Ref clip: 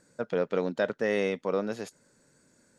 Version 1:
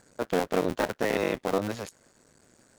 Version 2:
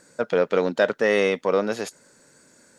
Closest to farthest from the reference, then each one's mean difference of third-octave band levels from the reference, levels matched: 2, 1; 2.0, 6.0 dB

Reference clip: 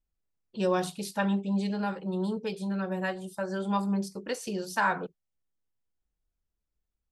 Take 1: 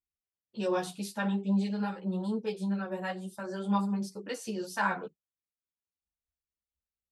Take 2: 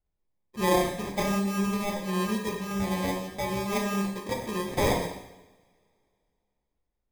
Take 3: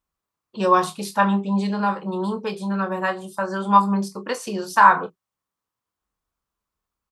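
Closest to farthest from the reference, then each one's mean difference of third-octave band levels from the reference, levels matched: 1, 3, 2; 2.0, 3.0, 13.0 dB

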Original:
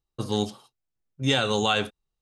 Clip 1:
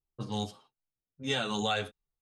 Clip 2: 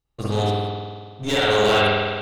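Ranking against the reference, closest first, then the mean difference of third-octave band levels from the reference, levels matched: 1, 2; 2.5, 8.0 dB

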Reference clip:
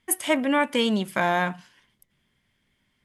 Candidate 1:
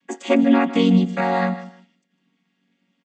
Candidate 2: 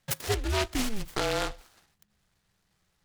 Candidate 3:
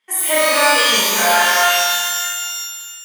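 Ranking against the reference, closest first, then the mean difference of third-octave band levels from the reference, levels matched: 1, 2, 3; 8.5, 11.5, 15.0 dB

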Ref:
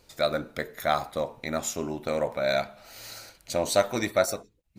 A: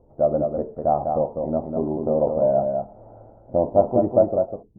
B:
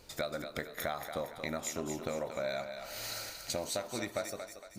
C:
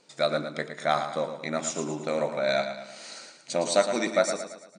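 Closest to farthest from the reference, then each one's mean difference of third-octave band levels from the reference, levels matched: C, B, A; 5.5, 7.5, 12.5 dB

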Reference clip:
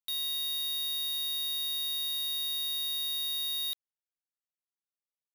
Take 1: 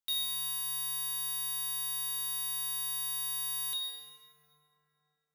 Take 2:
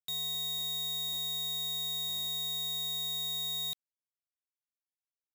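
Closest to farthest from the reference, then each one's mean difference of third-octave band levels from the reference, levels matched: 1, 2; 3.5, 5.5 dB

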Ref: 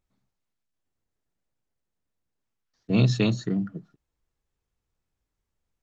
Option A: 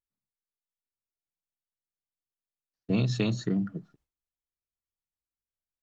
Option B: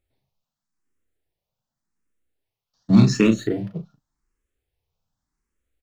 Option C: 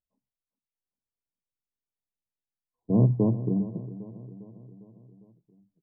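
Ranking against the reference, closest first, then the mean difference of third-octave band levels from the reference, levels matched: A, B, C; 2.0, 4.0, 7.5 dB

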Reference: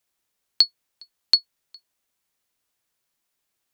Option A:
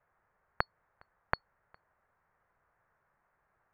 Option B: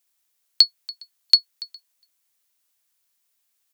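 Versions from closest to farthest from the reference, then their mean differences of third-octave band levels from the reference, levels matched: B, A; 1.5, 11.5 dB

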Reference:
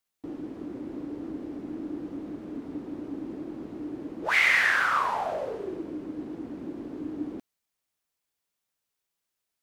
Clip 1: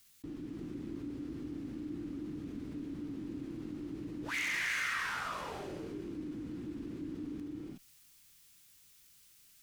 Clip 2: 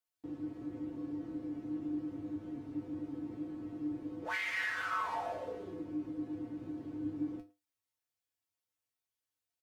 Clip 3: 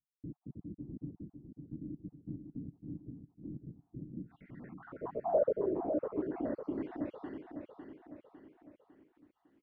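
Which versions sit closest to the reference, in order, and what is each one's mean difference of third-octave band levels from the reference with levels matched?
2, 1, 3; 3.0, 7.0, 11.5 dB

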